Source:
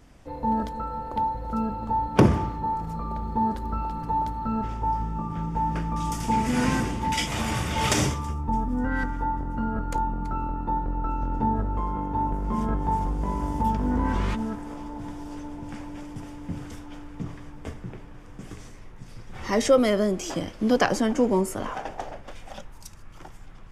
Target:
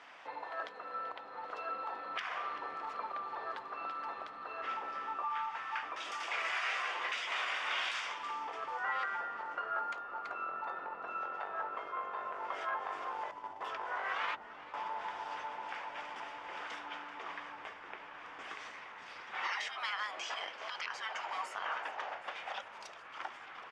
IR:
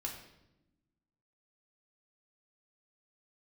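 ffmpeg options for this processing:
-filter_complex "[0:a]asettb=1/sr,asplit=3[s0][s1][s2];[s0]atrim=end=5.234[s3];[s1]atrim=start=5.23:end=5.83,asetpts=PTS-STARTPTS,afade=t=in:d=0.004:c=qsin,afade=t=out:st=0.596:d=0.004:c=qsin,highpass=1200[s4];[s2]atrim=start=5.826[s5];[s3][s4]acrossfade=d=0.004:c1=hsin:c2=qsin[s6];[s6][s5]acrossfade=d=0.004:c1=qsin:c2=hsin,asettb=1/sr,asplit=3[s7][s8][s9];[s7]atrim=end=13.314[s10];[s8]atrim=start=13.31:end=14.74,asetpts=PTS-STARTPTS,afade=t=in:d=0.004:c=qsin,afade=t=out:st=1.426:d=0.004:c=qsin,agate=range=0.0891:threshold=0.0631:ratio=16:detection=peak[s11];[s9]atrim=start=14.736[s12];[s10][s11]acrossfade=d=0.004:c1=hsin:c2=qsin[s13];[s13][s12]acrossfade=d=0.004:c1=qsin:c2=hsin,afftfilt=real='re*lt(hypot(re,im),0.1)':imag='im*lt(hypot(re,im),0.1)':win_size=1024:overlap=0.75,asplit=2[s14][s15];[s15]acompressor=threshold=0.00708:ratio=10,volume=1[s16];[s14][s16]amix=inputs=2:normalize=0,alimiter=level_in=1.33:limit=0.0631:level=0:latency=1:release=420,volume=0.75,asuperpass=centerf=1700:order=4:qfactor=0.69,asplit=2[s17][s18];[s18]asplit=6[s19][s20][s21][s22][s23][s24];[s19]adelay=385,afreqshift=-100,volume=0.158[s25];[s20]adelay=770,afreqshift=-200,volume=0.0966[s26];[s21]adelay=1155,afreqshift=-300,volume=0.0589[s27];[s22]adelay=1540,afreqshift=-400,volume=0.0359[s28];[s23]adelay=1925,afreqshift=-500,volume=0.0219[s29];[s24]adelay=2310,afreqshift=-600,volume=0.0133[s30];[s25][s26][s27][s28][s29][s30]amix=inputs=6:normalize=0[s31];[s17][s31]amix=inputs=2:normalize=0,volume=1.5"

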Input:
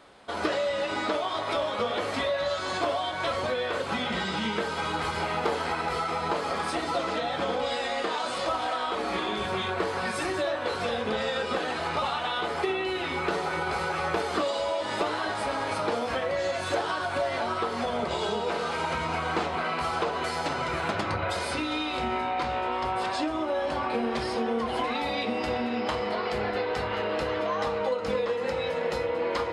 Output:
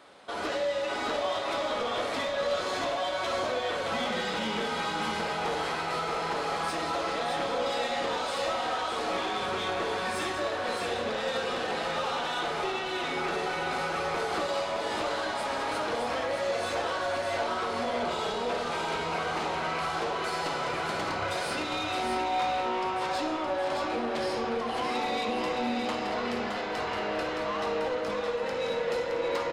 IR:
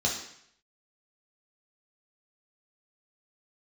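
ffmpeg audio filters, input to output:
-filter_complex "[0:a]highpass=f=220:p=1,asoftclip=type=tanh:threshold=0.0398,aecho=1:1:617:0.562,asplit=2[s0][s1];[1:a]atrim=start_sample=2205,adelay=53[s2];[s1][s2]afir=irnorm=-1:irlink=0,volume=0.158[s3];[s0][s3]amix=inputs=2:normalize=0"

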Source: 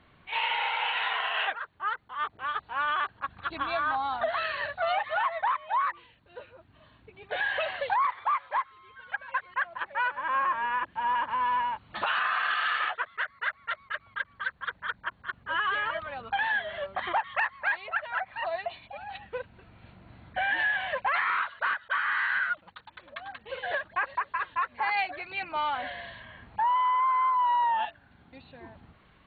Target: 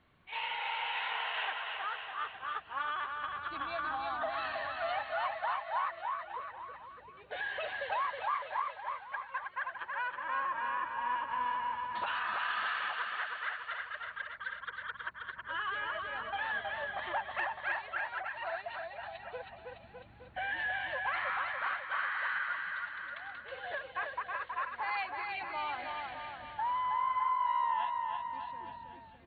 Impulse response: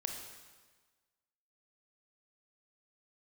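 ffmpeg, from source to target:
-af "aecho=1:1:320|608|867.2|1100|1310:0.631|0.398|0.251|0.158|0.1,volume=0.376"

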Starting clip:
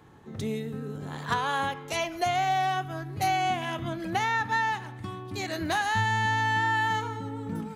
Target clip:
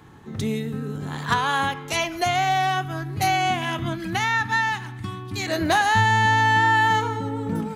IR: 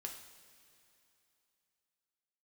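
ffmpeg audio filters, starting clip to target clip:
-af "asetnsamples=n=441:p=0,asendcmd='3.95 equalizer g -14;5.47 equalizer g 3',equalizer=f=560:w=1.5:g=-5.5,volume=2.24"

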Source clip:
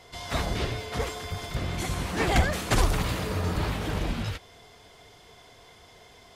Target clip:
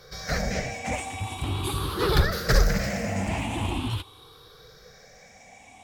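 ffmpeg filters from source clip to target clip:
-af "afftfilt=real='re*pow(10,15/40*sin(2*PI*(0.6*log(max(b,1)*sr/1024/100)/log(2)-(0.39)*(pts-256)/sr)))':imag='im*pow(10,15/40*sin(2*PI*(0.6*log(max(b,1)*sr/1024/100)/log(2)-(0.39)*(pts-256)/sr)))':win_size=1024:overlap=0.75,asetrate=48000,aresample=44100,volume=0.891"

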